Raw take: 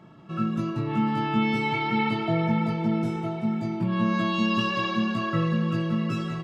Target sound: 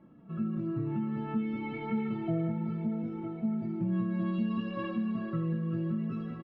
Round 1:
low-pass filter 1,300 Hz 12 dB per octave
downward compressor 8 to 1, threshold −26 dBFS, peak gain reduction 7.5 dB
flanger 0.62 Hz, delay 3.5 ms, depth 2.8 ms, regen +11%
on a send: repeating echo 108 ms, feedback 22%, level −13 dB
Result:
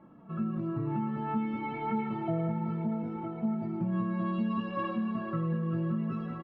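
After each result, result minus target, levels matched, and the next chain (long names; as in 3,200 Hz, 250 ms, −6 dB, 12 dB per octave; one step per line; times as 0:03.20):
echo 38 ms late; 1,000 Hz band +7.0 dB
low-pass filter 1,300 Hz 12 dB per octave
downward compressor 8 to 1, threshold −26 dBFS, peak gain reduction 7.5 dB
flanger 0.62 Hz, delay 3.5 ms, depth 2.8 ms, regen +11%
on a send: repeating echo 70 ms, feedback 22%, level −13 dB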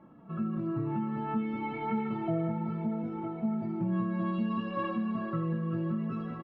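1,000 Hz band +6.5 dB
low-pass filter 1,300 Hz 12 dB per octave
parametric band 950 Hz −9 dB 1.5 octaves
downward compressor 8 to 1, threshold −26 dBFS, peak gain reduction 6.5 dB
flanger 0.62 Hz, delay 3.5 ms, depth 2.8 ms, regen +11%
on a send: repeating echo 70 ms, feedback 22%, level −13 dB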